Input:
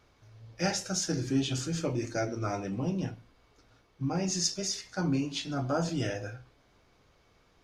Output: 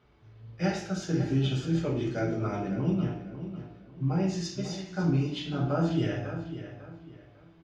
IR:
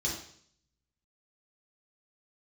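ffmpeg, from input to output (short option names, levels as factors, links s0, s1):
-filter_complex "[0:a]highshelf=f=4100:t=q:w=1.5:g=-11,asplit=2[s0][s1];[s1]adelay=548,lowpass=f=4100:p=1,volume=0.282,asplit=2[s2][s3];[s3]adelay=548,lowpass=f=4100:p=1,volume=0.31,asplit=2[s4][s5];[s5]adelay=548,lowpass=f=4100:p=1,volume=0.31[s6];[s0][s2][s4][s6]amix=inputs=4:normalize=0,asplit=2[s7][s8];[1:a]atrim=start_sample=2205[s9];[s8][s9]afir=irnorm=-1:irlink=0,volume=0.473[s10];[s7][s10]amix=inputs=2:normalize=0,volume=0.841"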